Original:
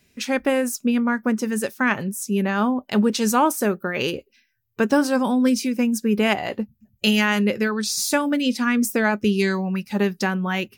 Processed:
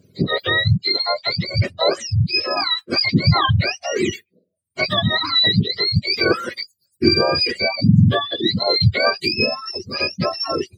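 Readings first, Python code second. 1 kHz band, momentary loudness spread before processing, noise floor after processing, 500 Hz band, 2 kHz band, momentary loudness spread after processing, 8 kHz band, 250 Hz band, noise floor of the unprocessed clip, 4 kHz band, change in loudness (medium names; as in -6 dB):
+0.5 dB, 6 LU, -71 dBFS, +1.0 dB, +2.5 dB, 8 LU, -10.0 dB, -3.0 dB, -66 dBFS, +12.0 dB, +3.5 dB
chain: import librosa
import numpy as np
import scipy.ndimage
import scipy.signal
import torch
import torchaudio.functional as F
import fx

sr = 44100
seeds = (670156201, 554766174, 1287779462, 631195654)

y = fx.octave_mirror(x, sr, pivot_hz=1000.0)
y = fx.notch_comb(y, sr, f0_hz=890.0)
y = fx.dereverb_blind(y, sr, rt60_s=0.71)
y = F.gain(torch.from_numpy(y), 5.5).numpy()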